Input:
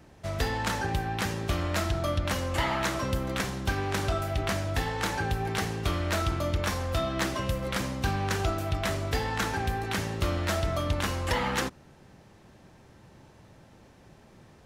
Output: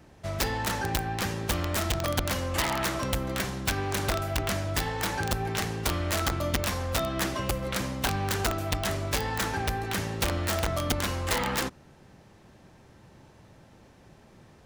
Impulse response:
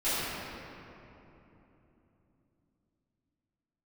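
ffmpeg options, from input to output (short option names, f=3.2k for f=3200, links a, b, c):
-af "aeval=exprs='(mod(9.44*val(0)+1,2)-1)/9.44':c=same"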